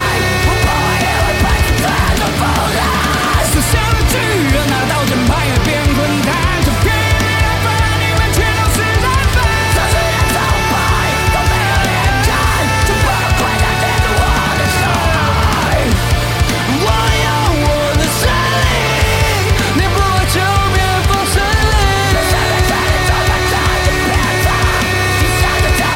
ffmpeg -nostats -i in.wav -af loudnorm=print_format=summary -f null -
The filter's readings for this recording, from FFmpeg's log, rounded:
Input Integrated:    -12.7 LUFS
Input True Peak:      -2.8 dBTP
Input LRA:             0.6 LU
Input Threshold:     -22.7 LUFS